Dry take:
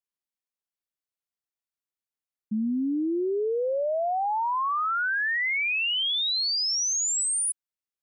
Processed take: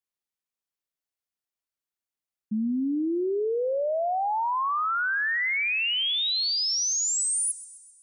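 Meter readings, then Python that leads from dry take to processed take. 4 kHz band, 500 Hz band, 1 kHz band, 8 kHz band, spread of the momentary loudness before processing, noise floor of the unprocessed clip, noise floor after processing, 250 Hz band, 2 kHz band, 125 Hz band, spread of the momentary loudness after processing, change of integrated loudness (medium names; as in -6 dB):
0.0 dB, 0.0 dB, 0.0 dB, 0.0 dB, 4 LU, under -85 dBFS, under -85 dBFS, 0.0 dB, 0.0 dB, no reading, 5 LU, 0.0 dB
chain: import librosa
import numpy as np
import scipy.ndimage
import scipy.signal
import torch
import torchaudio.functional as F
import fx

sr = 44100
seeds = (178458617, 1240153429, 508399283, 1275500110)

y = fx.echo_thinned(x, sr, ms=130, feedback_pct=57, hz=530.0, wet_db=-17.0)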